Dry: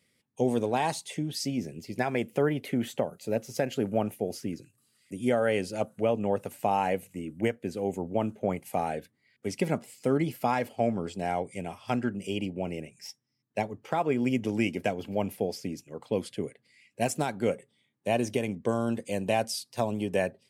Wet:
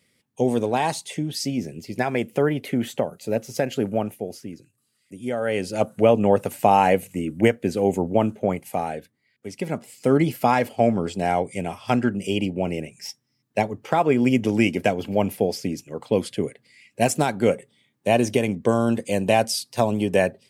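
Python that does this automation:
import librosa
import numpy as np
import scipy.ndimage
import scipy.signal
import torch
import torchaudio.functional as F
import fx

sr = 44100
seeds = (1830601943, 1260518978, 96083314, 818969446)

y = fx.gain(x, sr, db=fx.line((3.84, 5.0), (4.47, -2.0), (5.29, -2.0), (5.91, 10.0), (8.01, 10.0), (9.5, -2.5), (10.15, 8.0)))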